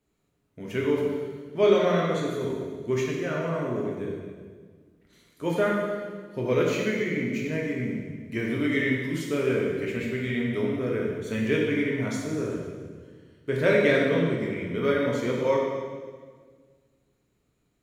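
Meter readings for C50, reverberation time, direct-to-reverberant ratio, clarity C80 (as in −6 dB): 1.0 dB, 1.6 s, −3.0 dB, 2.5 dB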